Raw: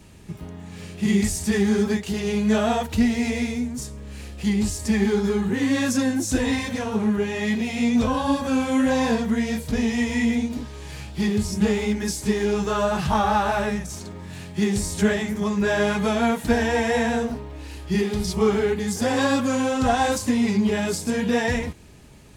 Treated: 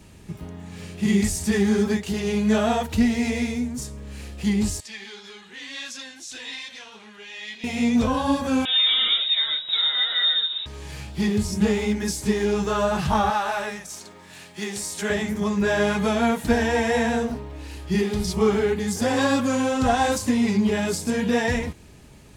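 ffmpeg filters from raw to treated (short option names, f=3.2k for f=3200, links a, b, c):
-filter_complex "[0:a]asettb=1/sr,asplit=3[a][b][c];[a]atrim=end=4.804[d];[b]atrim=start=4.8:end=7.64,asetpts=PTS-STARTPTS,afade=t=in:d=0.004:c=qsin,afade=t=out:st=2.836:d=0.004:c=qsin,bandpass=f=3.5k:t=q:w=1.6[e];[c]atrim=start=7.636[f];[d][e]acrossfade=d=0.004:c1=hsin:c2=qsin[g];[g][f]acrossfade=d=0.004:c1=qsin:c2=hsin,asettb=1/sr,asplit=3[h][i][j];[h]atrim=end=8.654[k];[i]atrim=start=8.65:end=10.66,asetpts=PTS-STARTPTS,afade=t=in:d=0.004:c=qsin,afade=t=out:st=2.006:d=0.004:c=qsin,lowpass=f=3.3k:t=q:w=0.5098,lowpass=f=3.3k:t=q:w=0.6013,lowpass=f=3.3k:t=q:w=0.9,lowpass=f=3.3k:t=q:w=2.563,afreqshift=-3900[l];[j]atrim=start=10.656[m];[k][l]acrossfade=d=0.004:c1=hsin:c2=qsin[n];[n][m]acrossfade=d=0.004:c1=qsin:c2=hsin,asettb=1/sr,asplit=3[o][p][q];[o]atrim=end=13.304[r];[p]atrim=start=13.3:end=15.1,asetpts=PTS-STARTPTS,afade=t=in:d=0.004:c=qsin,afade=t=out:st=1.796:d=0.004:c=qsin,highpass=f=800:p=1[s];[q]atrim=start=15.096[t];[r][s]acrossfade=d=0.004:c1=hsin:c2=qsin[u];[u][t]acrossfade=d=0.004:c1=qsin:c2=hsin"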